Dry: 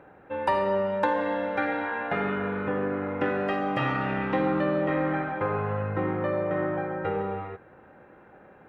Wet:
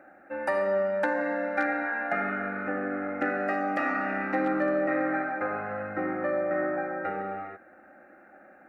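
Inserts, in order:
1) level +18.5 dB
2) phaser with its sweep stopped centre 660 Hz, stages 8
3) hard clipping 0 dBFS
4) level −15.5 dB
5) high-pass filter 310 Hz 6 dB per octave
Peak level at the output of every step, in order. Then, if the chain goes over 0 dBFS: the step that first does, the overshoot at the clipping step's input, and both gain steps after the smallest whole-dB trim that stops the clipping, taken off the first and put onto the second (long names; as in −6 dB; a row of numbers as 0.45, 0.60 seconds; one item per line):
+8.5, +3.5, 0.0, −15.5, −14.5 dBFS
step 1, 3.5 dB
step 1 +14.5 dB, step 4 −11.5 dB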